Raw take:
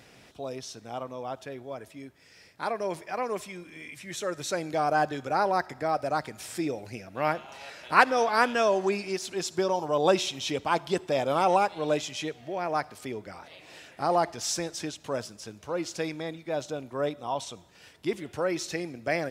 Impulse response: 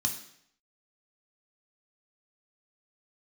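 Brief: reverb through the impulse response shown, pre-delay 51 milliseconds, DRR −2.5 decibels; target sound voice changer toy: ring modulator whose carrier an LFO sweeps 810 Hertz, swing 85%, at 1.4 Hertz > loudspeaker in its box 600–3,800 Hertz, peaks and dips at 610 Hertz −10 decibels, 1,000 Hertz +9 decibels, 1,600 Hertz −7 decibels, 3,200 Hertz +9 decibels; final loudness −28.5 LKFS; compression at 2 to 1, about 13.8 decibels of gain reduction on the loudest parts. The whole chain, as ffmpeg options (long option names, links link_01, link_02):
-filter_complex "[0:a]acompressor=threshold=-39dB:ratio=2,asplit=2[link_01][link_02];[1:a]atrim=start_sample=2205,adelay=51[link_03];[link_02][link_03]afir=irnorm=-1:irlink=0,volume=-1.5dB[link_04];[link_01][link_04]amix=inputs=2:normalize=0,aeval=exprs='val(0)*sin(2*PI*810*n/s+810*0.85/1.4*sin(2*PI*1.4*n/s))':channel_layout=same,highpass=600,equalizer=frequency=610:width_type=q:width=4:gain=-10,equalizer=frequency=1000:width_type=q:width=4:gain=9,equalizer=frequency=1600:width_type=q:width=4:gain=-7,equalizer=frequency=3200:width_type=q:width=4:gain=9,lowpass=frequency=3800:width=0.5412,lowpass=frequency=3800:width=1.3066,volume=8dB"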